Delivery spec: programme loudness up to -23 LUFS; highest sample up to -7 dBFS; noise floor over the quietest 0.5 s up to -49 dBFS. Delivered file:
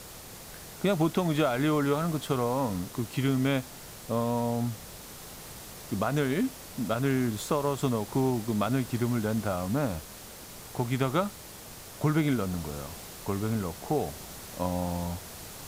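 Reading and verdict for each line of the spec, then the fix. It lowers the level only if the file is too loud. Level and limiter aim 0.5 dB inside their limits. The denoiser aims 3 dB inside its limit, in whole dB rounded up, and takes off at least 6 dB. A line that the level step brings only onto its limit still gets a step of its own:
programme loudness -29.5 LUFS: OK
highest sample -14.0 dBFS: OK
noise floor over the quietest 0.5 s -45 dBFS: fail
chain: denoiser 7 dB, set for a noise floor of -45 dBFS

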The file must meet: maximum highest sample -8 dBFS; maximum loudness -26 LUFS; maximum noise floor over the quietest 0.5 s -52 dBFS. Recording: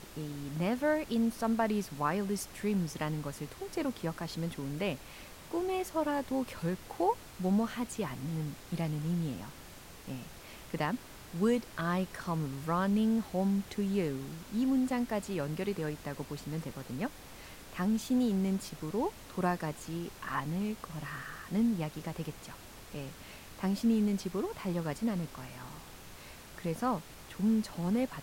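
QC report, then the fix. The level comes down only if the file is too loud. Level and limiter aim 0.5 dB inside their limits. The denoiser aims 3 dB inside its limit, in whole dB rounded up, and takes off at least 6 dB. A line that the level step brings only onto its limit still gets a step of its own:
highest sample -17.0 dBFS: OK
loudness -34.0 LUFS: OK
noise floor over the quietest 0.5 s -50 dBFS: fail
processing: denoiser 6 dB, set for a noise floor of -50 dBFS

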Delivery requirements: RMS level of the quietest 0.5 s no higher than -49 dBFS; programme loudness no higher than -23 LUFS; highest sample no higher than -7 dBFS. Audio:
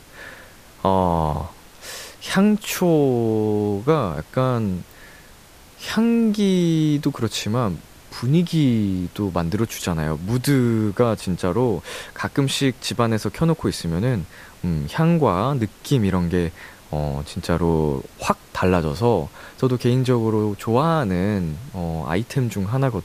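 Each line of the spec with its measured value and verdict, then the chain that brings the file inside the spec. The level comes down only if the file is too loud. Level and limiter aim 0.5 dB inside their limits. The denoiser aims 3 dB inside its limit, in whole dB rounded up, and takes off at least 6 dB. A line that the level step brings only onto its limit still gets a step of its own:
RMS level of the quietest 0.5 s -46 dBFS: fail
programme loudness -21.5 LUFS: fail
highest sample -3.5 dBFS: fail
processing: denoiser 6 dB, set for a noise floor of -46 dBFS; gain -2 dB; limiter -7.5 dBFS

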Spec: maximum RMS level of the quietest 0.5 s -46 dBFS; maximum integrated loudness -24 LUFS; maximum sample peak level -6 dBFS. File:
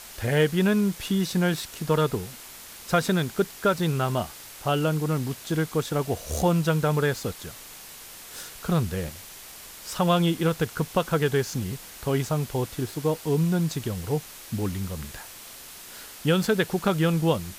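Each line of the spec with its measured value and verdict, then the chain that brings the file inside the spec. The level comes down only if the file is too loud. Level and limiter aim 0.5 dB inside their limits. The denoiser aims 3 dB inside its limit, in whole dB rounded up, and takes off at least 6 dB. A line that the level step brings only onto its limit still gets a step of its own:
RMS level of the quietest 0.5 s -44 dBFS: fail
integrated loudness -26.0 LUFS: OK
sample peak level -10.0 dBFS: OK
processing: denoiser 6 dB, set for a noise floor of -44 dBFS

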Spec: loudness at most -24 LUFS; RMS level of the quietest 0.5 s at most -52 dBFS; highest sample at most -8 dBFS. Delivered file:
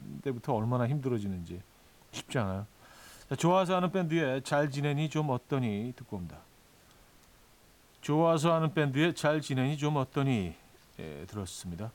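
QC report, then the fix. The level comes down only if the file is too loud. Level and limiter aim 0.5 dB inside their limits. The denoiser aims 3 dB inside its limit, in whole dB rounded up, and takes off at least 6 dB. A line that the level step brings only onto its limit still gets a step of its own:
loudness -31.0 LUFS: OK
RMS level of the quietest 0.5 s -61 dBFS: OK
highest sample -15.0 dBFS: OK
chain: none

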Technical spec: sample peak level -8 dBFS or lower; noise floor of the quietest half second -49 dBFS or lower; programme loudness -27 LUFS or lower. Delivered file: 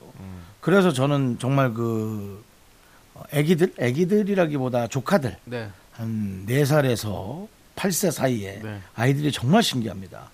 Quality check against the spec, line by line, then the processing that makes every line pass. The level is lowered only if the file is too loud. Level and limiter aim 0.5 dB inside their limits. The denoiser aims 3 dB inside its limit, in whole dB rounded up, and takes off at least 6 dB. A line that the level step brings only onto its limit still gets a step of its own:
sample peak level -6.5 dBFS: fail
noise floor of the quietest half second -53 dBFS: OK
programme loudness -23.0 LUFS: fail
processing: gain -4.5 dB

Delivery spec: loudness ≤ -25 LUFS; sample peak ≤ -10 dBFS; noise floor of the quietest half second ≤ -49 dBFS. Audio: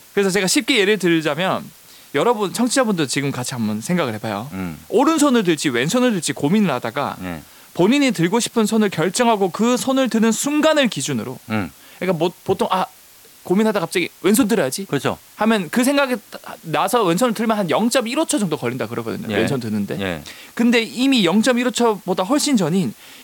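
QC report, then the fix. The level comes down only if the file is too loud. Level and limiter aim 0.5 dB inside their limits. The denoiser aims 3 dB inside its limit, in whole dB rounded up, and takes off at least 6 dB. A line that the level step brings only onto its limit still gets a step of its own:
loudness -18.5 LUFS: fail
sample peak -4.5 dBFS: fail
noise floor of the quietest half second -46 dBFS: fail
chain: gain -7 dB

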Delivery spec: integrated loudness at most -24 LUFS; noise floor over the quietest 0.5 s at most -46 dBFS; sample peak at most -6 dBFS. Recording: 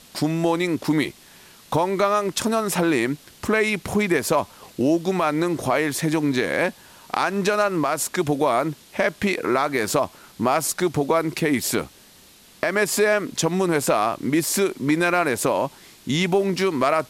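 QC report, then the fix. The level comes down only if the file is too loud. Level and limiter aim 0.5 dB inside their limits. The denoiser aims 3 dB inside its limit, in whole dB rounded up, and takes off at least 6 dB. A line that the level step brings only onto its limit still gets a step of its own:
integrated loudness -22.0 LUFS: fail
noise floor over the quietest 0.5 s -50 dBFS: OK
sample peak -8.0 dBFS: OK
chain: gain -2.5 dB

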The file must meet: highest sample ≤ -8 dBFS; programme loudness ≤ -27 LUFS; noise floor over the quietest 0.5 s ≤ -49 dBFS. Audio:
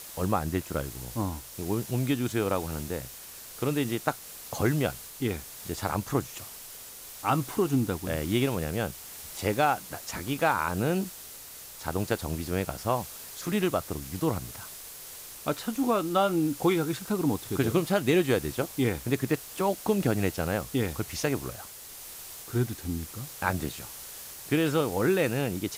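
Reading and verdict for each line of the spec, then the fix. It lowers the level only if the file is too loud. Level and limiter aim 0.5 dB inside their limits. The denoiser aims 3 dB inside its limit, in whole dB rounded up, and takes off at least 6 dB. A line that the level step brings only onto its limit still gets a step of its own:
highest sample -9.0 dBFS: OK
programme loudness -29.5 LUFS: OK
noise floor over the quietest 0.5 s -45 dBFS: fail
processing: denoiser 7 dB, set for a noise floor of -45 dBFS

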